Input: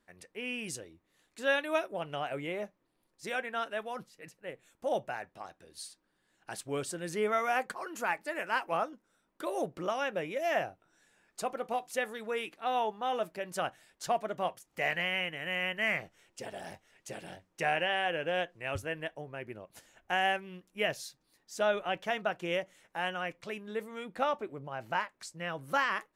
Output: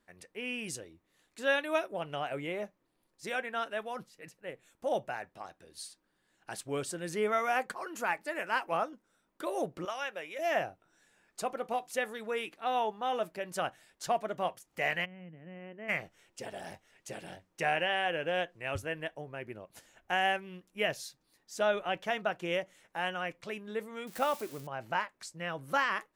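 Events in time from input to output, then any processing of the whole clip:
9.85–10.39 HPF 1200 Hz 6 dB/oct
15.04–15.88 band-pass 120 Hz -> 360 Hz, Q 1.7
24.07–24.67 switching spikes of -34.5 dBFS

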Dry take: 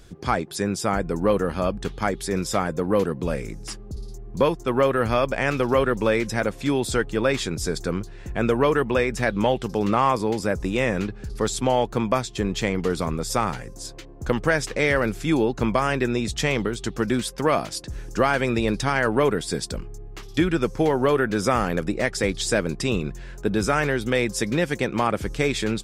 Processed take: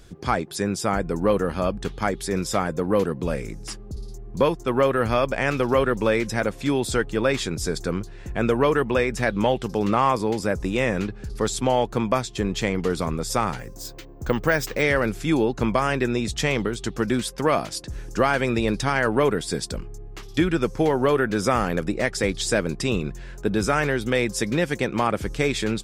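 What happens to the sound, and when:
13.59–14.82 careless resampling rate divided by 2×, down filtered, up hold

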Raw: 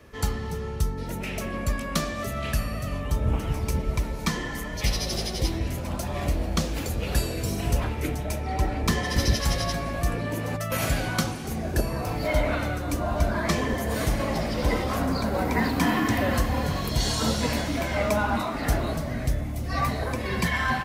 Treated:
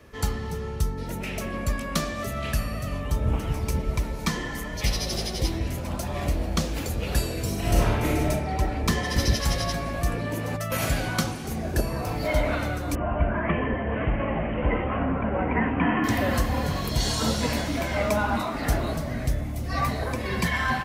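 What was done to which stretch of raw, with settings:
7.6–8.3 reverb throw, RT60 1.1 s, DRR -4 dB
12.95–16.04 steep low-pass 3000 Hz 96 dB/oct

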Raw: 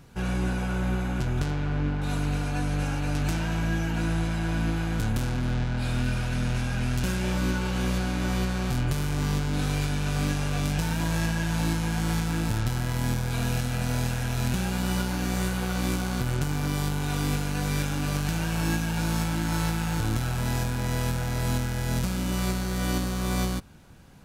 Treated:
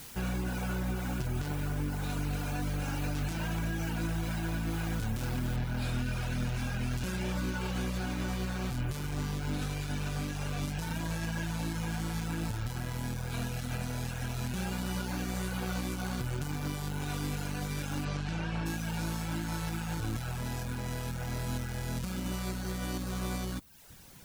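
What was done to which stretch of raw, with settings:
5.56 noise floor step -45 dB -52 dB
18.04–18.65 LPF 6500 Hz -> 3600 Hz
whole clip: reverb removal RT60 0.65 s; limiter -22.5 dBFS; gain -2.5 dB

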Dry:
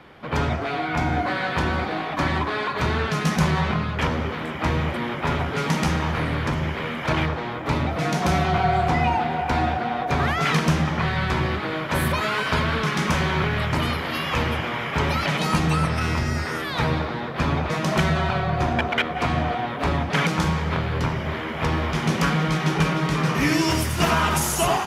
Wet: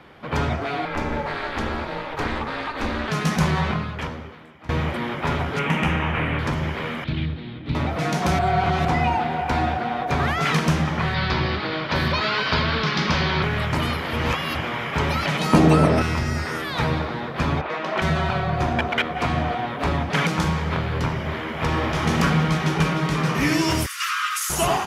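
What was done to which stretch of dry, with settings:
0.85–3.08 ring modulator 150 Hz
3.69–4.69 fade out quadratic, to -20 dB
5.59–6.39 resonant high shelf 3500 Hz -8.5 dB, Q 3
7.04–7.75 EQ curve 260 Hz 0 dB, 490 Hz -14 dB, 1000 Hz -20 dB, 3900 Hz -1 dB, 6500 Hz -25 dB
8.39–8.85 reverse
11.14–13.43 resonant high shelf 6600 Hz -13.5 dB, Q 3
14.13–14.55 reverse
15.53–16.02 small resonant body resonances 290/420/590 Hz, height 13 dB, ringing for 25 ms
17.61–18.02 three-band isolator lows -20 dB, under 300 Hz, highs -23 dB, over 3900 Hz
21.6–22.19 reverb throw, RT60 2.5 s, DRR 2.5 dB
23.86–24.5 Chebyshev high-pass 1100 Hz, order 8

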